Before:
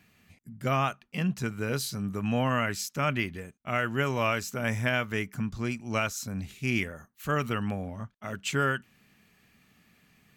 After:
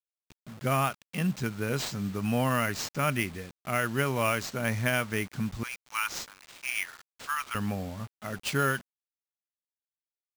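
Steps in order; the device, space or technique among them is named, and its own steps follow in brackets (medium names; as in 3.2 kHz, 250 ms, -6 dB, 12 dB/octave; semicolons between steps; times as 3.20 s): 5.63–7.55 s: steep high-pass 870 Hz 72 dB/octave; early 8-bit sampler (sample-rate reducer 12 kHz, jitter 0%; bit crusher 8-bit)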